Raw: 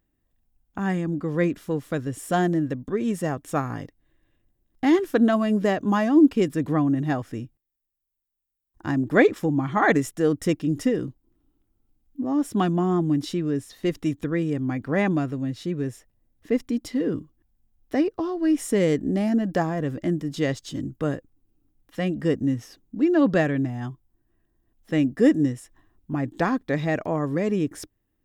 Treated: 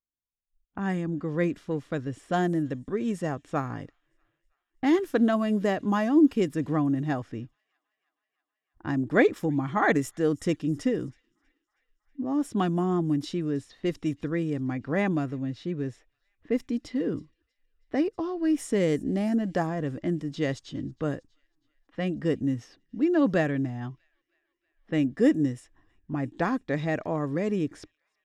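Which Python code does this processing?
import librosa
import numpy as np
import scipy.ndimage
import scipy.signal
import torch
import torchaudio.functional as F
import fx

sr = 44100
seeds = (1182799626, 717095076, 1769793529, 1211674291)

y = fx.noise_reduce_blind(x, sr, reduce_db=26)
y = fx.echo_wet_highpass(y, sr, ms=320, feedback_pct=73, hz=3900.0, wet_db=-22)
y = fx.env_lowpass(y, sr, base_hz=2100.0, full_db=-18.5)
y = y * 10.0 ** (-3.5 / 20.0)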